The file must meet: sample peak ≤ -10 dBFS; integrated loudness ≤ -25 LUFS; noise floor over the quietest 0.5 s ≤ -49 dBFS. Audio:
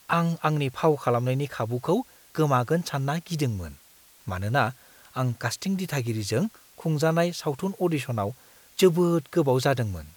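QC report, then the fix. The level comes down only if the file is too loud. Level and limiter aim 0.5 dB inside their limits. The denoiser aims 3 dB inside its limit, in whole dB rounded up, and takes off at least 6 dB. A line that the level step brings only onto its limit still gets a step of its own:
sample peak -8.5 dBFS: fail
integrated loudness -26.0 LUFS: pass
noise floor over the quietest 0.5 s -55 dBFS: pass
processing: peak limiter -10.5 dBFS

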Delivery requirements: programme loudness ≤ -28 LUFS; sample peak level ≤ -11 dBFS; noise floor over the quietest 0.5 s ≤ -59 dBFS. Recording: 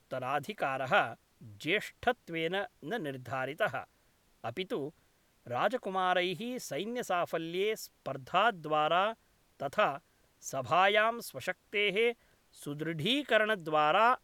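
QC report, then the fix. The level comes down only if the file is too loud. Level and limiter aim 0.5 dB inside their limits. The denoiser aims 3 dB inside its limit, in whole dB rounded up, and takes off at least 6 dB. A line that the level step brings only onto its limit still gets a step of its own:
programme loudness -32.0 LUFS: pass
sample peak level -13.0 dBFS: pass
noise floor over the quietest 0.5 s -69 dBFS: pass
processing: none needed

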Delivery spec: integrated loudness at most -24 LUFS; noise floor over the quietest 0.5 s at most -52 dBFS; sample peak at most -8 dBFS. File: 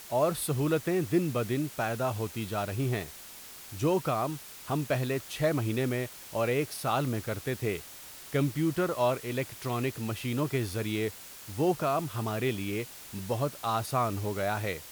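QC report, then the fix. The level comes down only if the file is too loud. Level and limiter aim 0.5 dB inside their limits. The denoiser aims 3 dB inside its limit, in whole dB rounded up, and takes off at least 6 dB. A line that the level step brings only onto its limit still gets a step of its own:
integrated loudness -31.0 LUFS: pass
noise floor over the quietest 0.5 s -47 dBFS: fail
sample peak -14.5 dBFS: pass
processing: noise reduction 8 dB, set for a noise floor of -47 dBFS

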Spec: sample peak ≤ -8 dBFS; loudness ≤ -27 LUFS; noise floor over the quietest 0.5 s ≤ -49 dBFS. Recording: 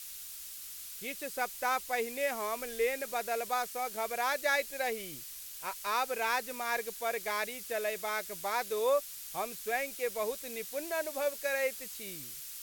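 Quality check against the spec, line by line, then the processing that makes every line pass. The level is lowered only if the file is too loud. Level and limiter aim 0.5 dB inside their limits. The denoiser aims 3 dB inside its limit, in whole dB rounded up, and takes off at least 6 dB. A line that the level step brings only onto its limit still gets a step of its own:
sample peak -18.5 dBFS: pass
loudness -34.0 LUFS: pass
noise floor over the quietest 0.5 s -45 dBFS: fail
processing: noise reduction 7 dB, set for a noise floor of -45 dBFS

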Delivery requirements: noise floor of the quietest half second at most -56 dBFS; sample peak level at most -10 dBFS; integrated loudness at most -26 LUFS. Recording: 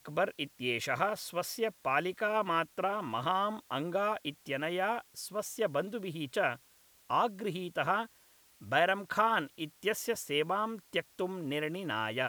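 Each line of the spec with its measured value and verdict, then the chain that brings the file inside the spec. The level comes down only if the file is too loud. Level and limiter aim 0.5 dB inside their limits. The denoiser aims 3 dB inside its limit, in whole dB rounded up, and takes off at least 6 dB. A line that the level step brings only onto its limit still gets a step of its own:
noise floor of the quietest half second -64 dBFS: pass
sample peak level -14.0 dBFS: pass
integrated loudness -33.5 LUFS: pass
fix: none needed

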